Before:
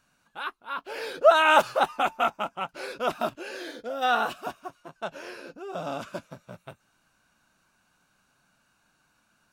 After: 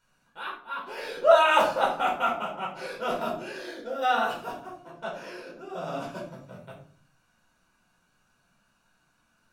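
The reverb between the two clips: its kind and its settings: shoebox room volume 430 m³, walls furnished, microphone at 4.7 m; gain -8.5 dB

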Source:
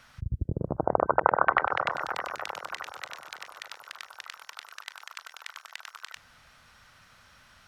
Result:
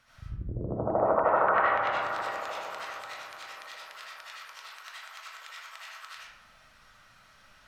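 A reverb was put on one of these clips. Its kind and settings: digital reverb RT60 0.86 s, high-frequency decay 0.6×, pre-delay 40 ms, DRR -9 dB; gain -10 dB

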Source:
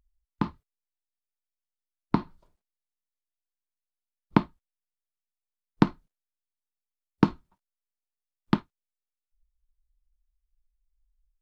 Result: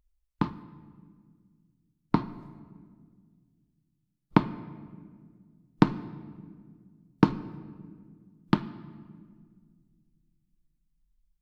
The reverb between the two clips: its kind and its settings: shoebox room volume 2700 m³, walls mixed, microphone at 0.48 m

